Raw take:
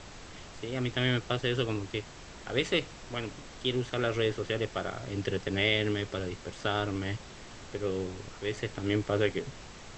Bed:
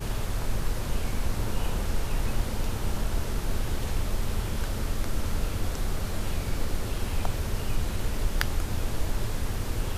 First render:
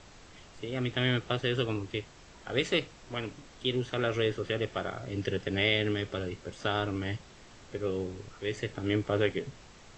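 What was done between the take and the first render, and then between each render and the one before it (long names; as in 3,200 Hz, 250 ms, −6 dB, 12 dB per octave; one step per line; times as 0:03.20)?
noise reduction from a noise print 6 dB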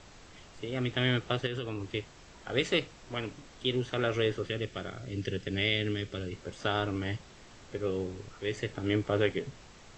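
0:01.46–0:01.87: downward compressor 5 to 1, threshold −31 dBFS
0:04.47–0:06.33: parametric band 860 Hz −9.5 dB 1.6 octaves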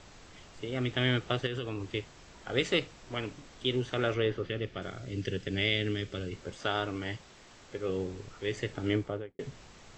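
0:04.14–0:04.82: high-frequency loss of the air 140 metres
0:06.57–0:07.89: low-shelf EQ 270 Hz −6 dB
0:08.87–0:09.39: fade out and dull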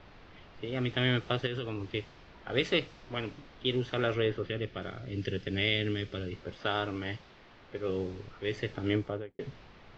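low-pass filter 5,500 Hz 24 dB per octave
low-pass that shuts in the quiet parts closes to 2,900 Hz, open at −26 dBFS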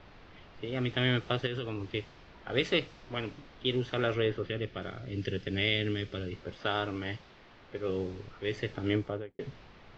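no processing that can be heard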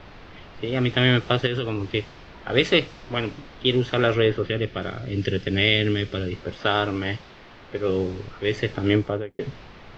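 level +9.5 dB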